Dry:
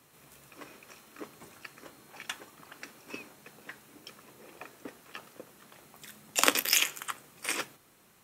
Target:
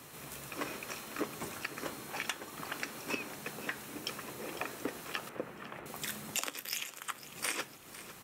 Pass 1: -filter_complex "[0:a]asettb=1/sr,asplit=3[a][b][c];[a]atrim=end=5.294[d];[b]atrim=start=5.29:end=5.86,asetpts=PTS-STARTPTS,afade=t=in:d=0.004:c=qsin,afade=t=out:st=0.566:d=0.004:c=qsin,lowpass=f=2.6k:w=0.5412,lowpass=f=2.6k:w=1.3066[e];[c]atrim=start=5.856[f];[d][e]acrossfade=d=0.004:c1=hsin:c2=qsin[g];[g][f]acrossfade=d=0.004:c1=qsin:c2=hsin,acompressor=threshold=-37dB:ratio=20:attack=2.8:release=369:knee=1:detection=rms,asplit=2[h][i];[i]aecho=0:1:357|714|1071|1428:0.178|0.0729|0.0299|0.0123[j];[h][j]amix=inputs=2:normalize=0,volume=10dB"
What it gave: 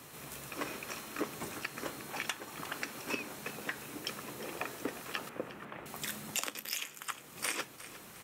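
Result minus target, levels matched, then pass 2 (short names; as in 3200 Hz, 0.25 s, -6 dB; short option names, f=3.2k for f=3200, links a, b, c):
echo 0.145 s early
-filter_complex "[0:a]asettb=1/sr,asplit=3[a][b][c];[a]atrim=end=5.294[d];[b]atrim=start=5.29:end=5.86,asetpts=PTS-STARTPTS,afade=t=in:d=0.004:c=qsin,afade=t=out:st=0.566:d=0.004:c=qsin,lowpass=f=2.6k:w=0.5412,lowpass=f=2.6k:w=1.3066[e];[c]atrim=start=5.856[f];[d][e]acrossfade=d=0.004:c1=hsin:c2=qsin[g];[g][f]acrossfade=d=0.004:c1=qsin:c2=hsin,acompressor=threshold=-37dB:ratio=20:attack=2.8:release=369:knee=1:detection=rms,asplit=2[h][i];[i]aecho=0:1:502|1004|1506|2008:0.178|0.0729|0.0299|0.0123[j];[h][j]amix=inputs=2:normalize=0,volume=10dB"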